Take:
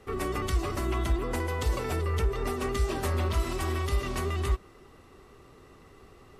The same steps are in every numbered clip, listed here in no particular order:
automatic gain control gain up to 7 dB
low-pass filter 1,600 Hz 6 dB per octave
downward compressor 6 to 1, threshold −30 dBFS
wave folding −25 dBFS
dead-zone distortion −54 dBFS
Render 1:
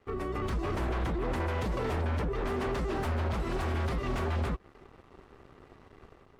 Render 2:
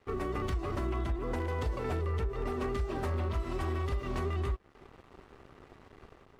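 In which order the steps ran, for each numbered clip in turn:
dead-zone distortion, then downward compressor, then automatic gain control, then wave folding, then low-pass filter
low-pass filter, then dead-zone distortion, then automatic gain control, then downward compressor, then wave folding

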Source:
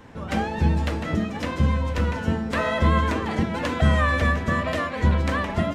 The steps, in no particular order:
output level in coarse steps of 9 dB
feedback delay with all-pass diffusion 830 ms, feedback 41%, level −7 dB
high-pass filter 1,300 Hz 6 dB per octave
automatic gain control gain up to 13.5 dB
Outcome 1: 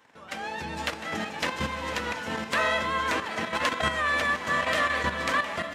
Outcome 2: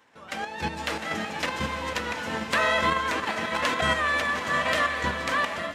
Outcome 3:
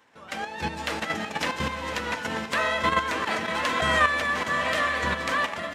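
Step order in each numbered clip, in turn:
feedback delay with all-pass diffusion, then automatic gain control, then output level in coarse steps, then high-pass filter
output level in coarse steps, then feedback delay with all-pass diffusion, then automatic gain control, then high-pass filter
feedback delay with all-pass diffusion, then output level in coarse steps, then automatic gain control, then high-pass filter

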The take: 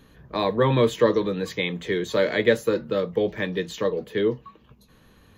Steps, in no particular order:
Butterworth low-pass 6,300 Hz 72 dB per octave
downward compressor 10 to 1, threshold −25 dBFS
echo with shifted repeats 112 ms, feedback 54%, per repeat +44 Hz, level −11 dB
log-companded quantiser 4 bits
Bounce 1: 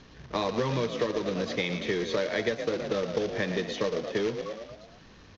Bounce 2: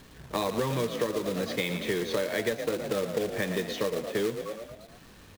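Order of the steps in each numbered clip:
echo with shifted repeats, then downward compressor, then log-companded quantiser, then Butterworth low-pass
Butterworth low-pass, then log-companded quantiser, then echo with shifted repeats, then downward compressor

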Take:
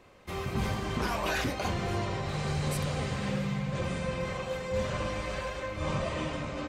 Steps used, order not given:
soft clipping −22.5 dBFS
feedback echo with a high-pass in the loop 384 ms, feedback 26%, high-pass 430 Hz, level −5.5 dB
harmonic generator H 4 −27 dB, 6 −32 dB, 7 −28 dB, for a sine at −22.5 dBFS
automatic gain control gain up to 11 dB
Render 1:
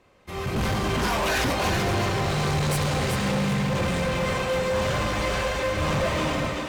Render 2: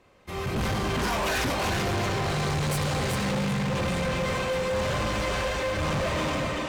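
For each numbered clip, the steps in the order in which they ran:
soft clipping, then automatic gain control, then harmonic generator, then feedback echo with a high-pass in the loop
automatic gain control, then feedback echo with a high-pass in the loop, then harmonic generator, then soft clipping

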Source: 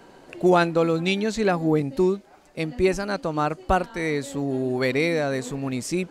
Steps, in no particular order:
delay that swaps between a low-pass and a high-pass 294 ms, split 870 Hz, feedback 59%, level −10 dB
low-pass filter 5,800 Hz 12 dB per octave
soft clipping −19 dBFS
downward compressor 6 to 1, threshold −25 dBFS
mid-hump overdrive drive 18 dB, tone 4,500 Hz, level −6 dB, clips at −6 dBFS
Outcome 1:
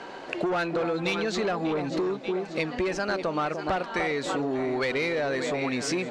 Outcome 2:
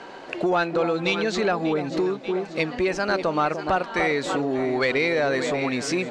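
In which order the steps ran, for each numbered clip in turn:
delay that swaps between a low-pass and a high-pass, then soft clipping, then low-pass filter, then mid-hump overdrive, then downward compressor
delay that swaps between a low-pass and a high-pass, then downward compressor, then soft clipping, then mid-hump overdrive, then low-pass filter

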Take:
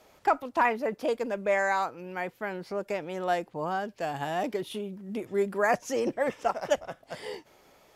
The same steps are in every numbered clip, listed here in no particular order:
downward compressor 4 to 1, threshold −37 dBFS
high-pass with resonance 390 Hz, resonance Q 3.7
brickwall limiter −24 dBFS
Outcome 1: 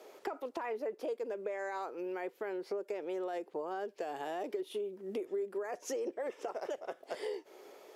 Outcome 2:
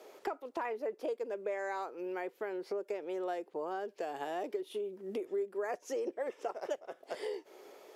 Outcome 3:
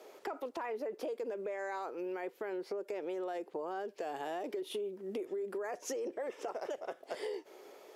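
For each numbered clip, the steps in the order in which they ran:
brickwall limiter, then high-pass with resonance, then downward compressor
high-pass with resonance, then downward compressor, then brickwall limiter
high-pass with resonance, then brickwall limiter, then downward compressor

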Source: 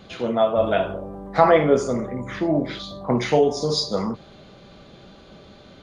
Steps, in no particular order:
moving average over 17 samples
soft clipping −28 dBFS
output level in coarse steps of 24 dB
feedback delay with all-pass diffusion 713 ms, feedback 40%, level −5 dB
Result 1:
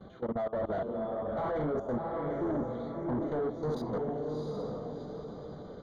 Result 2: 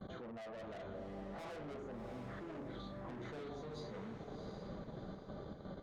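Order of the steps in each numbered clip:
output level in coarse steps, then feedback delay with all-pass diffusion, then soft clipping, then moving average
moving average, then soft clipping, then output level in coarse steps, then feedback delay with all-pass diffusion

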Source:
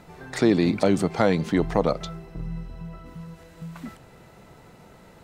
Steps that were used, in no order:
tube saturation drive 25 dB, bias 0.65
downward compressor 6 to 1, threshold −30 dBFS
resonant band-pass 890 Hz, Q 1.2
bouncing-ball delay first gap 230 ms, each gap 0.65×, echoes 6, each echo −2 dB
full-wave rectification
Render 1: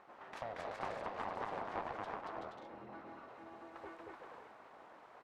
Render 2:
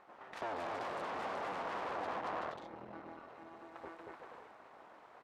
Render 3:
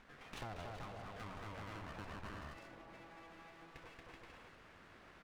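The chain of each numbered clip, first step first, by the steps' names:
downward compressor, then bouncing-ball delay, then full-wave rectification, then resonant band-pass, then tube saturation
bouncing-ball delay, then tube saturation, then full-wave rectification, then resonant band-pass, then downward compressor
resonant band-pass, then full-wave rectification, then bouncing-ball delay, then downward compressor, then tube saturation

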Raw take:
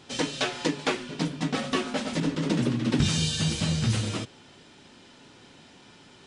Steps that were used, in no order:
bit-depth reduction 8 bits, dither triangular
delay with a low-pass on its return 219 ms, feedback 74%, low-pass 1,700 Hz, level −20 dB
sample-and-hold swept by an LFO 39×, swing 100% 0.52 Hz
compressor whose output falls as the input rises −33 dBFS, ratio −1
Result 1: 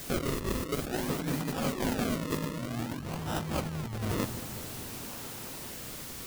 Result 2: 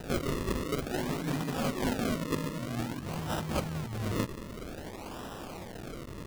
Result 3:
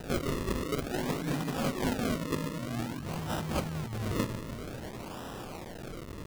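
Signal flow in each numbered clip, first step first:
sample-and-hold swept by an LFO, then bit-depth reduction, then delay with a low-pass on its return, then compressor whose output falls as the input rises
bit-depth reduction, then compressor whose output falls as the input rises, then delay with a low-pass on its return, then sample-and-hold swept by an LFO
delay with a low-pass on its return, then bit-depth reduction, then compressor whose output falls as the input rises, then sample-and-hold swept by an LFO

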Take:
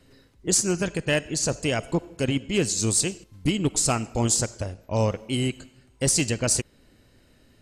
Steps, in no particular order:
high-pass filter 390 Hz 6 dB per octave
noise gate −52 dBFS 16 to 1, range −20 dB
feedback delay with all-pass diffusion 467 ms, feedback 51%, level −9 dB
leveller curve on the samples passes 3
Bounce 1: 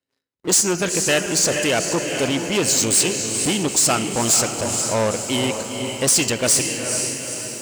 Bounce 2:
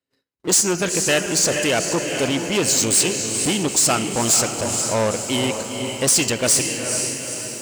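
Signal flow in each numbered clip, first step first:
feedback delay with all-pass diffusion, then leveller curve on the samples, then high-pass filter, then noise gate
feedback delay with all-pass diffusion, then noise gate, then leveller curve on the samples, then high-pass filter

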